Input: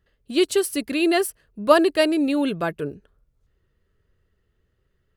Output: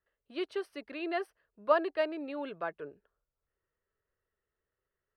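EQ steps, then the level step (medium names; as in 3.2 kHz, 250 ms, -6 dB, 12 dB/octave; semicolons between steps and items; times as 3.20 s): Savitzky-Golay filter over 15 samples; three-band isolator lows -16 dB, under 450 Hz, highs -13 dB, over 2.1 kHz; band-stop 770 Hz, Q 24; -8.5 dB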